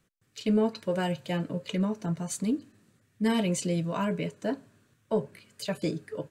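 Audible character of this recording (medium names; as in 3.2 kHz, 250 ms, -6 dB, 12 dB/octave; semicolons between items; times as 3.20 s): noise floor -70 dBFS; spectral tilt -5.5 dB/octave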